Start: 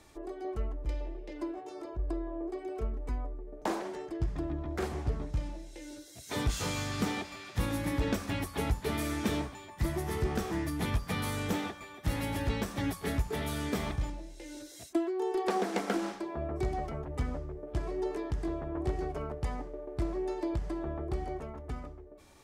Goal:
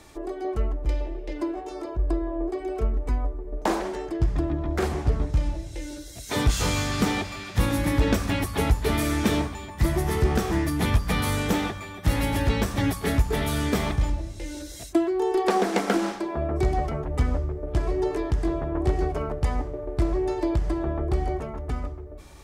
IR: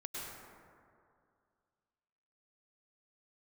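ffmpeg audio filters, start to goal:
-filter_complex "[0:a]asplit=2[link_01][link_02];[link_02]asubboost=boost=8:cutoff=130[link_03];[1:a]atrim=start_sample=2205[link_04];[link_03][link_04]afir=irnorm=-1:irlink=0,volume=-22dB[link_05];[link_01][link_05]amix=inputs=2:normalize=0,volume=8dB"

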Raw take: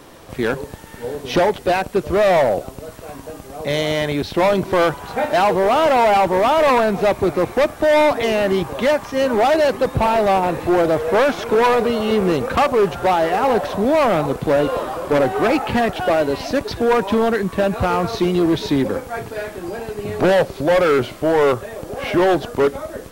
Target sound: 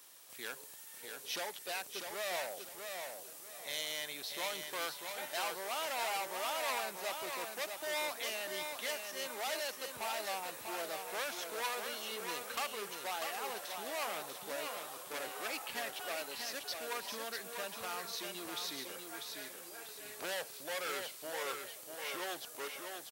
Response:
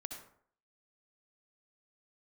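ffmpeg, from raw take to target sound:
-filter_complex "[0:a]aderivative,asplit=2[link_01][link_02];[link_02]aecho=0:1:644|1288|1932|2576:0.531|0.165|0.051|0.0158[link_03];[link_01][link_03]amix=inputs=2:normalize=0,volume=-6dB"

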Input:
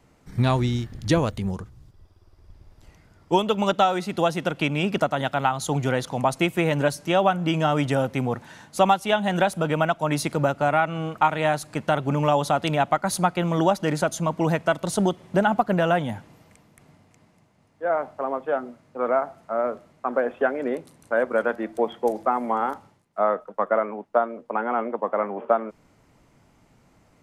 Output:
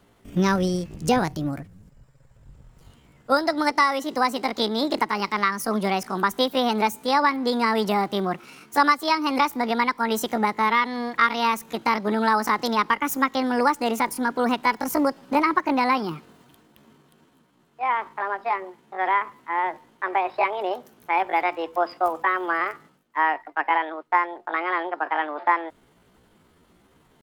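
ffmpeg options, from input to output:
ffmpeg -i in.wav -af "asetrate=66075,aresample=44100,atempo=0.66742" out.wav

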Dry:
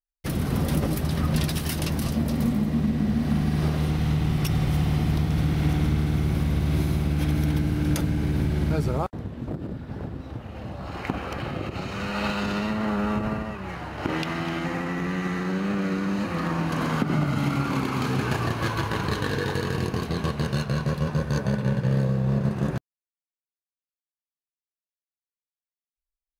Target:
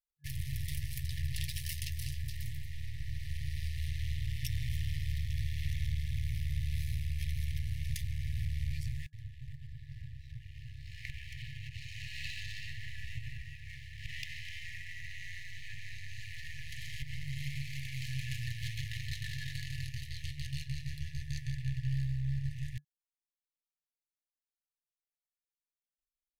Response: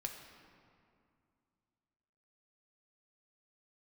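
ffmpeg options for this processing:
-af "aeval=exprs='if(lt(val(0),0),0.251*val(0),val(0))':channel_layout=same,afftfilt=real='re*(1-between(b*sr/4096,140,1700))':imag='im*(1-between(b*sr/4096,140,1700))':win_size=4096:overlap=0.75,volume=-5.5dB"

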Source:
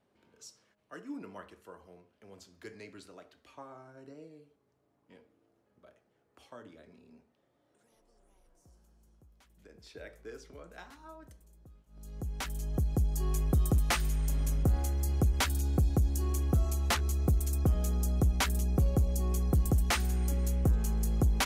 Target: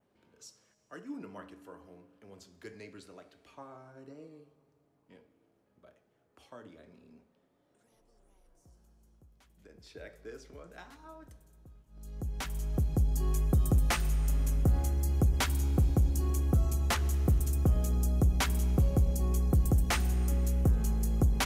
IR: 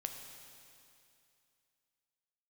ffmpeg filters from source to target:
-filter_complex "[0:a]adynamicequalizer=threshold=0.00141:dfrequency=4100:dqfactor=1.8:tfrequency=4100:tqfactor=1.8:attack=5:release=100:ratio=0.375:range=2.5:mode=cutabove:tftype=bell,asplit=2[link_01][link_02];[1:a]atrim=start_sample=2205,lowshelf=frequency=440:gain=6.5[link_03];[link_02][link_03]afir=irnorm=-1:irlink=0,volume=-7dB[link_04];[link_01][link_04]amix=inputs=2:normalize=0,volume=-3.5dB"

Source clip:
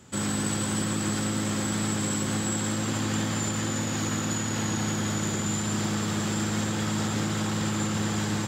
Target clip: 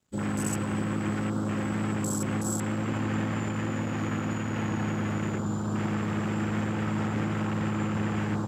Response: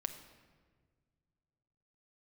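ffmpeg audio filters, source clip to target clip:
-af "aeval=exprs='sgn(val(0))*max(abs(val(0))-0.00211,0)':channel_layout=same,afwtdn=0.0178"

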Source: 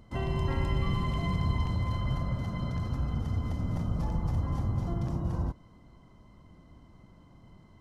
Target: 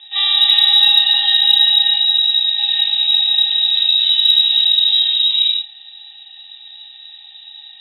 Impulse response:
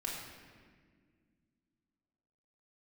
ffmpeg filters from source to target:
-filter_complex "[0:a]aemphasis=mode=production:type=75kf,asettb=1/sr,asplit=3[link_01][link_02][link_03];[link_01]atrim=end=1.944[link_04];[link_02]atrim=start=1.94:end=2.59,asetpts=PTS-STARTPTS,afade=type=in:duration=0.004:curve=qsin,afade=type=out:start_time=0.646:duration=0.004:curve=qsin,acrossover=split=300[link_05][link_06];[link_06]acompressor=threshold=-45dB:ratio=6[link_07];[link_05][link_07]amix=inputs=2:normalize=0[link_08];[link_03]atrim=start=2.586[link_09];[link_04][link_08]acrossfade=duration=0.004:curve1=hsin:curve2=qsin[link_10];[link_10][link_09]acrossfade=duration=0.004:curve1=qsin:curve2=hsin,lowpass=frequency=3300:width_type=q:width=0.5098,lowpass=frequency=3300:width_type=q:width=0.6013,lowpass=frequency=3300:width_type=q:width=0.9,lowpass=frequency=3300:width_type=q:width=2.563,afreqshift=-3900,crystalizer=i=2.5:c=0[link_11];[1:a]atrim=start_sample=2205,atrim=end_sample=6174[link_12];[link_11][link_12]afir=irnorm=-1:irlink=0,acontrast=48,volume=4dB"

